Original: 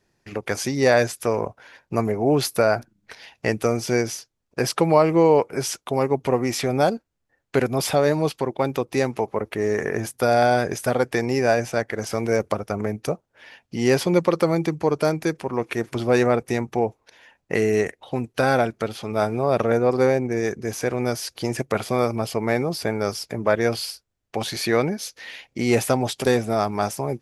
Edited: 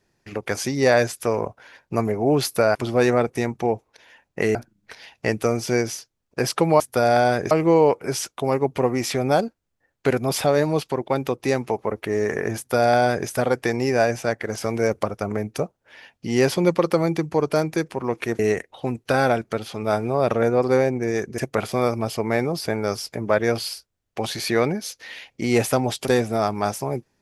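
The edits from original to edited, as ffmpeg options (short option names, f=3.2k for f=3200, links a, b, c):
-filter_complex "[0:a]asplit=7[a][b][c][d][e][f][g];[a]atrim=end=2.752[h];[b]atrim=start=15.878:end=17.682[i];[c]atrim=start=2.748:end=5.002[j];[d]atrim=start=10.058:end=10.772[k];[e]atrim=start=4.998:end=15.882[l];[f]atrim=start=17.678:end=20.672[m];[g]atrim=start=21.548[n];[h][i]acrossfade=d=0.004:c1=hsin:c2=hsin[o];[o][j]acrossfade=d=0.004:c1=hsin:c2=hsin[p];[p][k]acrossfade=d=0.004:c1=hsin:c2=hsin[q];[q][l]acrossfade=d=0.004:c1=hsin:c2=hsin[r];[r][m]acrossfade=d=0.004:c1=hsin:c2=hsin[s];[s][n]acrossfade=d=0.004:c1=hsin:c2=hsin"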